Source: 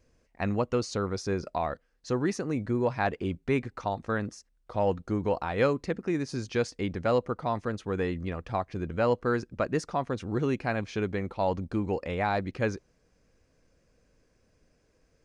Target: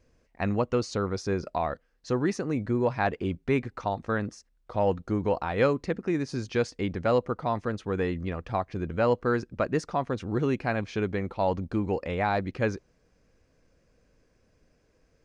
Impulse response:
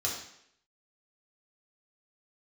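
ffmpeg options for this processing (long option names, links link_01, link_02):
-af "highshelf=frequency=8300:gain=-8,volume=1.5dB"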